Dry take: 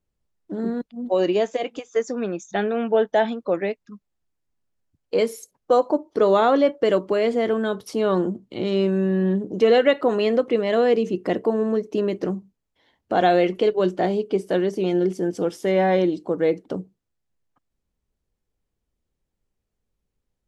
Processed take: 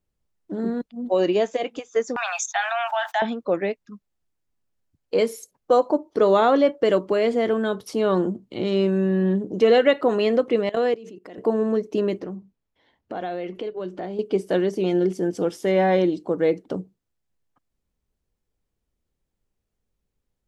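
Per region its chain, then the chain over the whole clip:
0:02.16–0:03.22: noise gate −44 dBFS, range −25 dB + Butterworth high-pass 700 Hz 96 dB per octave + envelope flattener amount 70%
0:10.69–0:11.38: high-pass filter 240 Hz 6 dB per octave + output level in coarse steps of 20 dB
0:12.20–0:14.19: high-shelf EQ 6,000 Hz −11 dB + downward compressor 2.5 to 1, threshold −32 dBFS
whole clip: no processing

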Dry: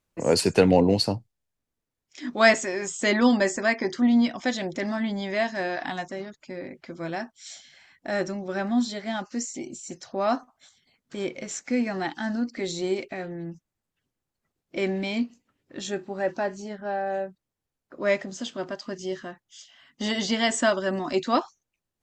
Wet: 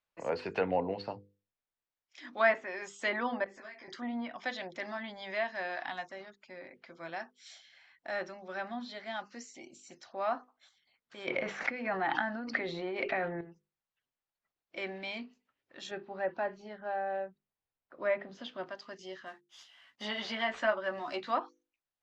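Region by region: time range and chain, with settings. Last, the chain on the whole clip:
0:03.44–0:03.88: downward compressor 16 to 1, threshold −31 dBFS + micro pitch shift up and down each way 20 cents
0:11.27–0:13.41: high-shelf EQ 6,200 Hz −6 dB + envelope flattener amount 100%
0:15.91–0:18.66: low-pass filter 4,500 Hz + low-shelf EQ 440 Hz +7 dB
0:19.26–0:21.31: variable-slope delta modulation 64 kbit/s + double-tracking delay 14 ms −5 dB
whole clip: mains-hum notches 50/100/150/200/250/300/350/400/450/500 Hz; treble cut that deepens with the level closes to 1,900 Hz, closed at −18 dBFS; three-way crossover with the lows and the highs turned down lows −13 dB, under 560 Hz, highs −17 dB, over 5,000 Hz; level −5.5 dB

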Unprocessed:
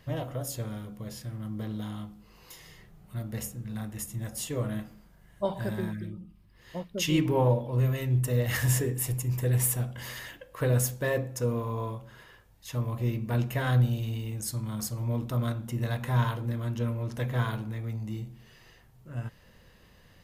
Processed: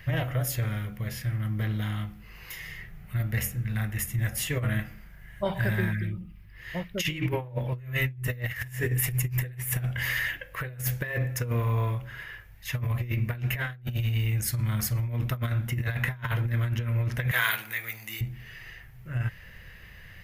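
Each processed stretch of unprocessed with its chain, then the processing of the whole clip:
0:17.31–0:18.21: high-pass filter 360 Hz 6 dB per octave + spectral tilt +4 dB per octave + notch filter 5,400 Hz, Q 15
whole clip: octave-band graphic EQ 250/500/1,000/2,000/4,000/8,000 Hz −12/−7/−9/+9/−7/−10 dB; compressor whose output falls as the input rises −35 dBFS, ratio −0.5; level +8 dB

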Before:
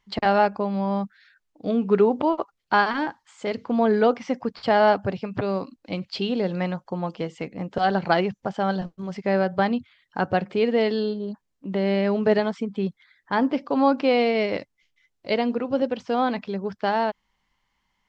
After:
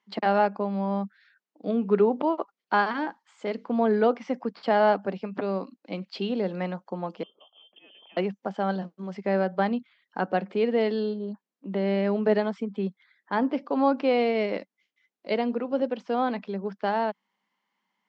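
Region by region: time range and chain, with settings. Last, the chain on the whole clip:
0:07.23–0:08.17: drawn EQ curve 120 Hz 0 dB, 200 Hz −21 dB, 1,700 Hz −29 dB, 2,700 Hz −2 dB, 4,000 Hz −28 dB, 6,200 Hz +10 dB + downward compressor 5 to 1, threshold −45 dBFS + voice inversion scrambler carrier 3,300 Hz
whole clip: Chebyshev high-pass filter 190 Hz, order 4; high-shelf EQ 4,900 Hz −9 dB; level −2.5 dB

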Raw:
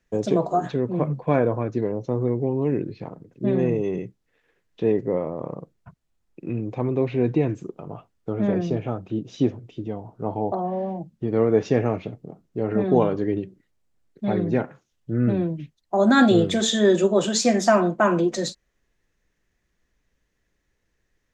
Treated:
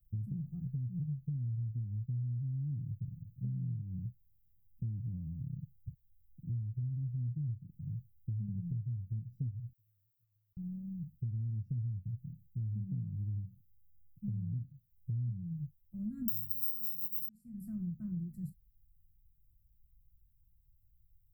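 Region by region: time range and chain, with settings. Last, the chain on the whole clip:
0:09.73–0:10.57: inverse Chebyshev high-pass filter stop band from 570 Hz + downward compressor, threshold −49 dBFS
0:16.28–0:17.29: samples sorted by size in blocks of 8 samples + high-shelf EQ 3,500 Hz +11.5 dB
whole clip: inverse Chebyshev band-stop filter 400–6,900 Hz, stop band 60 dB; high-shelf EQ 5,000 Hz +11 dB; downward compressor 6 to 1, threshold −42 dBFS; level +7 dB

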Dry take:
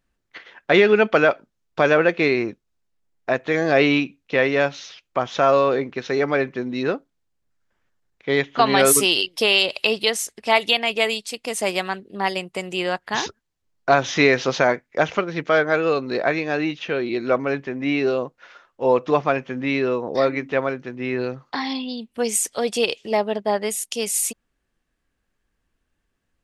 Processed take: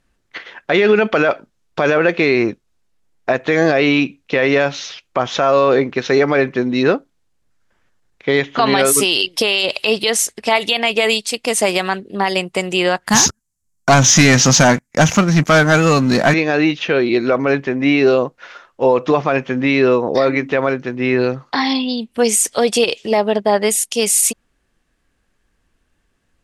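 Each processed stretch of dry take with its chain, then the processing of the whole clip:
0:13.07–0:16.34: drawn EQ curve 220 Hz 0 dB, 410 Hz −17 dB, 880 Hz −9 dB, 3,700 Hz −11 dB, 7,100 Hz +9 dB + leveller curve on the samples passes 3
whole clip: Chebyshev low-pass filter 11,000 Hz, order 2; boost into a limiter +13 dB; level −3 dB

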